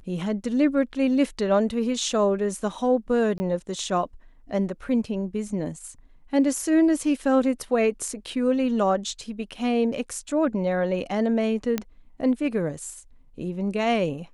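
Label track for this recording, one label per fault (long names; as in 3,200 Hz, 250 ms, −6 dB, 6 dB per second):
3.380000	3.400000	drop-out 20 ms
11.780000	11.780000	click −11 dBFS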